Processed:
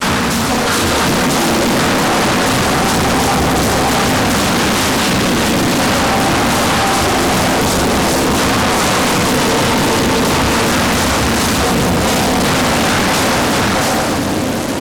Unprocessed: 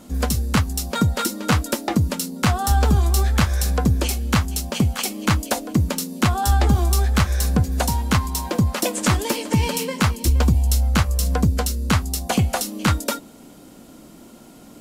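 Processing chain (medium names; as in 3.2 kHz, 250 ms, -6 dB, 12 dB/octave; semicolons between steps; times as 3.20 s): slices played last to first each 132 ms, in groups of 5; high-pass 210 Hz 12 dB/octave; two-band feedback delay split 560 Hz, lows 597 ms, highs 133 ms, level -10.5 dB; level rider gain up to 10 dB; multi-tap echo 231/362/381/633/675 ms -12/-11.5/-19/-19.5/-3.5 dB; reverberation RT60 1.9 s, pre-delay 3 ms, DRR -16.5 dB; companded quantiser 2-bit; peak limiter -3.5 dBFS, peak gain reduction 3.5 dB; low-pass 11 kHz 24 dB/octave; loudspeaker Doppler distortion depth 0.62 ms; trim -8.5 dB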